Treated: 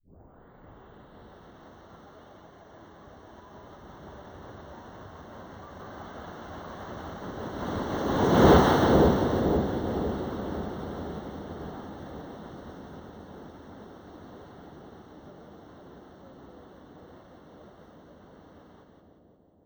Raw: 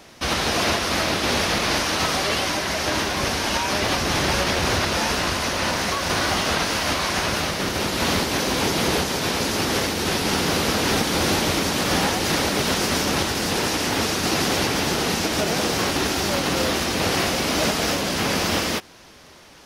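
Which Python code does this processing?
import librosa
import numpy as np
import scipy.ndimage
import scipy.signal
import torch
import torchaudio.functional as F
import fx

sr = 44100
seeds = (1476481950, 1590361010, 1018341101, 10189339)

p1 = fx.tape_start_head(x, sr, length_s=1.53)
p2 = fx.doppler_pass(p1, sr, speed_mps=17, closest_m=1.8, pass_at_s=8.51)
p3 = np.clip(10.0 ** (25.0 / 20.0) * p2, -1.0, 1.0) / 10.0 ** (25.0 / 20.0)
p4 = p2 + (p3 * librosa.db_to_amplitude(-6.5))
p5 = np.convolve(p4, np.full(18, 1.0 / 18))[:len(p4)]
p6 = p5 + fx.echo_split(p5, sr, split_hz=750.0, low_ms=507, high_ms=176, feedback_pct=52, wet_db=-3.0, dry=0)
p7 = np.repeat(scipy.signal.resample_poly(p6, 1, 2), 2)[:len(p6)]
y = p7 * librosa.db_to_amplitude(6.5)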